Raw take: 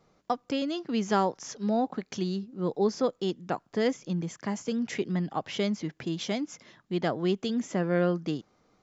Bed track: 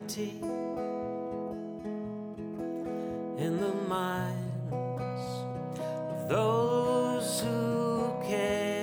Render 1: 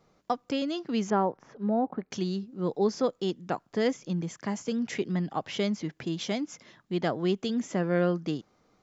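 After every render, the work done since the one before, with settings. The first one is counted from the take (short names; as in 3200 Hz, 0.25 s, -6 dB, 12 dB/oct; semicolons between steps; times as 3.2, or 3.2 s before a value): 1.1–2.11 LPF 1400 Hz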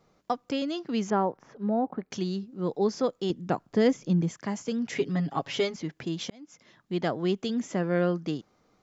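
3.3–4.31 low shelf 440 Hz +7.5 dB; 4.95–5.76 comb 7.2 ms, depth 90%; 6.3–6.92 fade in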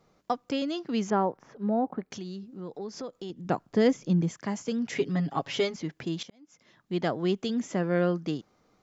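2.1–3.45 compressor 3:1, threshold -37 dBFS; 6.23–6.95 fade in linear, from -14.5 dB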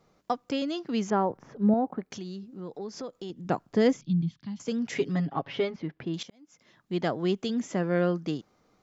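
1.3–1.74 low shelf 350 Hz +9.5 dB; 4.01–4.6 EQ curve 160 Hz 0 dB, 280 Hz -8 dB, 490 Hz -29 dB, 820 Hz -18 dB, 1900 Hz -17 dB, 3900 Hz +1 dB, 7000 Hz -27 dB; 5.25–6.14 air absorption 280 m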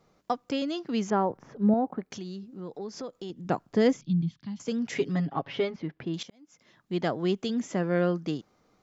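nothing audible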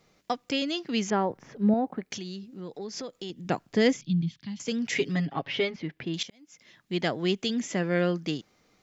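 resonant high shelf 1600 Hz +6 dB, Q 1.5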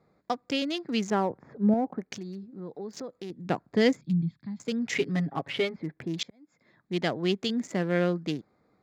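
Wiener smoothing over 15 samples; HPF 53 Hz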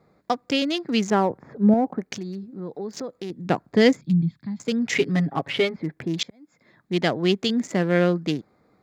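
gain +6 dB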